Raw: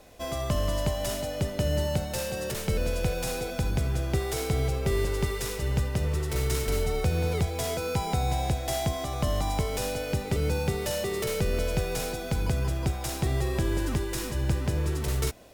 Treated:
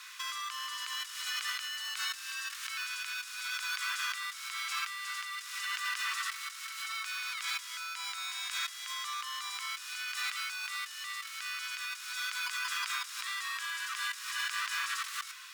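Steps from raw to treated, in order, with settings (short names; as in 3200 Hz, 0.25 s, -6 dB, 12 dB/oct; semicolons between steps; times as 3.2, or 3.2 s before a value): Chebyshev high-pass 1100 Hz, order 6; negative-ratio compressor -46 dBFS, ratio -1; bell 14000 Hz -8 dB 1.2 oct; gain +8.5 dB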